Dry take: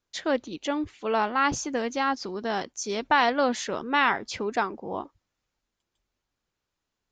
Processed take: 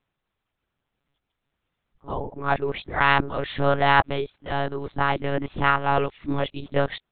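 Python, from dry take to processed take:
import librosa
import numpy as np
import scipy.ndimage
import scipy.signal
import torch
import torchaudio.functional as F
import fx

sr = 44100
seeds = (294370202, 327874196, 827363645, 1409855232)

y = np.flip(x).copy()
y = fx.lpc_monotone(y, sr, seeds[0], pitch_hz=140.0, order=10)
y = F.gain(torch.from_numpy(y), 3.5).numpy()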